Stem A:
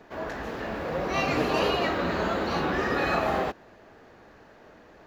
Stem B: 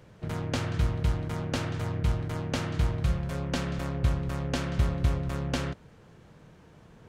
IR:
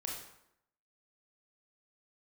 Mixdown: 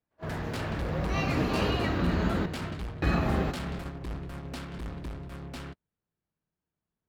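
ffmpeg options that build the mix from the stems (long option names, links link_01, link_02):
-filter_complex "[0:a]asubboost=boost=7.5:cutoff=240,volume=-4.5dB,asplit=3[link_01][link_02][link_03];[link_01]atrim=end=2.46,asetpts=PTS-STARTPTS,afade=type=out:start_time=2.456:duration=0.004:curve=hsin[link_04];[link_02]atrim=start=2.46:end=3.02,asetpts=PTS-STARTPTS,volume=0[link_05];[link_03]atrim=start=3.02,asetpts=PTS-STARTPTS,afade=type=in:duration=0.004:curve=hsin[link_06];[link_04][link_05][link_06]concat=n=3:v=0:a=1,asplit=2[link_07][link_08];[link_08]volume=-14.5dB[link_09];[1:a]aeval=exprs='0.237*sin(PI/2*2.51*val(0)/0.237)':channel_layout=same,equalizer=frequency=125:width_type=o:width=0.33:gain=-6,equalizer=frequency=500:width_type=o:width=0.33:gain=-6,equalizer=frequency=6300:width_type=o:width=0.33:gain=-9,asoftclip=type=hard:threshold=-21.5dB,volume=-11dB[link_10];[link_09]aecho=0:1:371|742|1113|1484:1|0.31|0.0961|0.0298[link_11];[link_07][link_10][link_11]amix=inputs=3:normalize=0,agate=range=-36dB:threshold=-35dB:ratio=16:detection=peak"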